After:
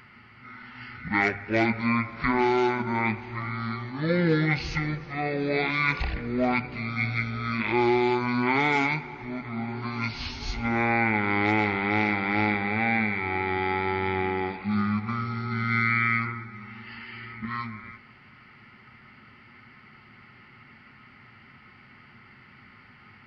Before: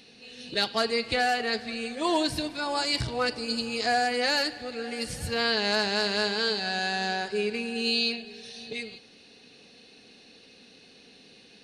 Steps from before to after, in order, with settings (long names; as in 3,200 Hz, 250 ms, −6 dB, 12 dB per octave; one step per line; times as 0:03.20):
mains-hum notches 50/100/150/200/250 Hz
wrong playback speed 15 ips tape played at 7.5 ips
level +2 dB